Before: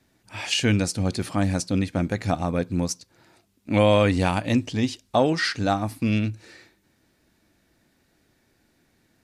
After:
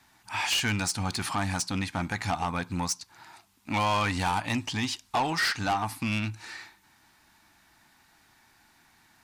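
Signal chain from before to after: resonant low shelf 680 Hz -8.5 dB, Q 3; in parallel at +0.5 dB: compression, threshold -35 dBFS, peak gain reduction 17 dB; on the sum: saturation -21.5 dBFS, distortion -9 dB

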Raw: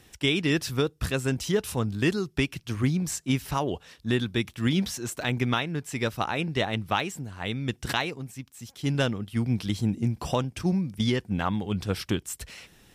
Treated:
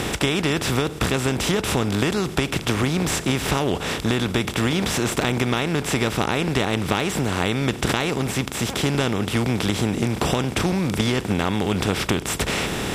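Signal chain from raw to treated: spectral levelling over time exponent 0.4; compression, threshold -22 dBFS, peak gain reduction 8 dB; trim +4.5 dB

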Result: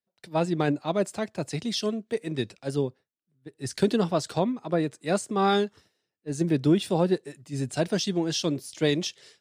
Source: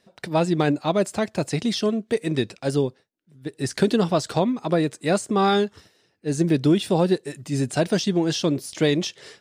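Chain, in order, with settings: three bands expanded up and down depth 70%; trim -4.5 dB

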